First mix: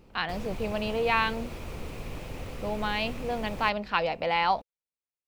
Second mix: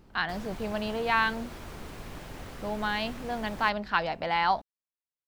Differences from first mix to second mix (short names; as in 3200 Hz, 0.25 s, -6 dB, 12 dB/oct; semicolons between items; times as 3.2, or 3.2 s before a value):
background: add low shelf 210 Hz -6.5 dB; master: add thirty-one-band EQ 500 Hz -7 dB, 1600 Hz +5 dB, 2500 Hz -7 dB